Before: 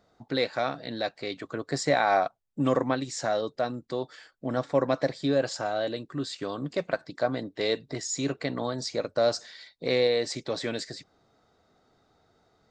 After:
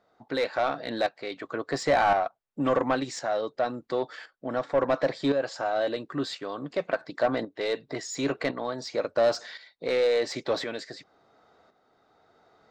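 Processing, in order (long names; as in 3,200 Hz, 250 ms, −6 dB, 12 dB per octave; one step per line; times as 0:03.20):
shaped tremolo saw up 0.94 Hz, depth 65%
mid-hump overdrive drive 17 dB, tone 1,500 Hz, clips at −12.5 dBFS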